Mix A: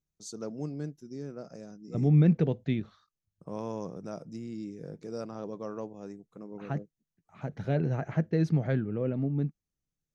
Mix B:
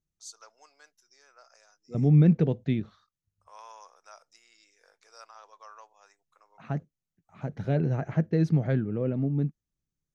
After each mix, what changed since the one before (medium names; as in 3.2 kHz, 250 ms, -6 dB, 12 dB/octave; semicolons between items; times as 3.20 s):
first voice: add high-pass 950 Hz 24 dB/octave; master: add bass shelf 450 Hz +3 dB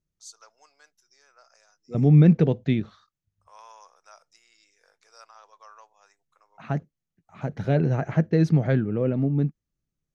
second voice +6.5 dB; master: add bass shelf 450 Hz -3 dB